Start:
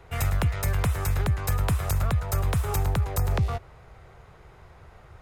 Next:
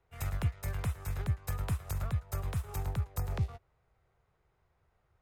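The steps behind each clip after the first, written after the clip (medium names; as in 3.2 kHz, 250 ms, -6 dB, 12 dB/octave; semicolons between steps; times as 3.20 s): upward expansion 2.5:1, over -32 dBFS; trim -5 dB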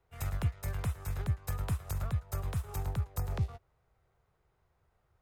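peaking EQ 2.2 kHz -2 dB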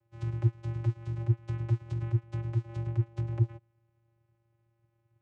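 vocoder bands 4, square 115 Hz; trim +8 dB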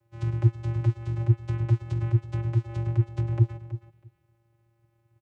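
feedback delay 324 ms, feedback 16%, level -13 dB; trim +5.5 dB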